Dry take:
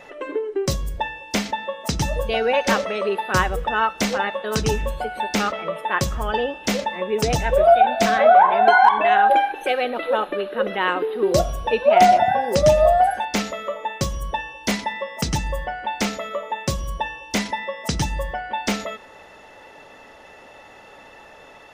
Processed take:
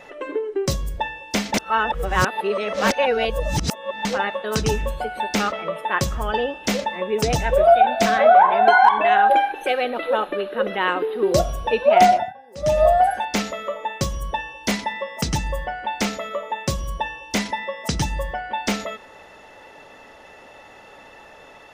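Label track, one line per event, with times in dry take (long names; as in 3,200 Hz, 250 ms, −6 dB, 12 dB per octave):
1.540000	4.050000	reverse
12.060000	12.820000	duck −23.5 dB, fades 0.27 s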